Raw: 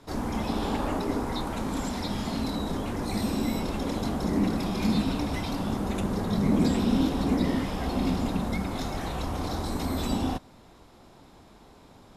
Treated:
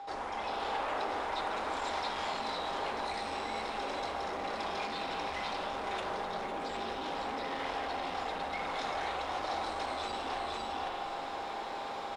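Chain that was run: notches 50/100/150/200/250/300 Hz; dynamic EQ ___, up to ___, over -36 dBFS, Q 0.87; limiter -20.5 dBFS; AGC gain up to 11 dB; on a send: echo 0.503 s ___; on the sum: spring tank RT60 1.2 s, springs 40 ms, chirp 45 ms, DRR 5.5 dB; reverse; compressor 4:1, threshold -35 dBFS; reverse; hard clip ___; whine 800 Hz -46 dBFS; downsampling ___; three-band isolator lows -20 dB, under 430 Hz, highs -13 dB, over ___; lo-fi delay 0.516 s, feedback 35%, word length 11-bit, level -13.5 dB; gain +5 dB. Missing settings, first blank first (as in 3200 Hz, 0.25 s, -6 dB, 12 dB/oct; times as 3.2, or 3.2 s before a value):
220 Hz, -5 dB, -8 dB, -33 dBFS, 22050 Hz, 4500 Hz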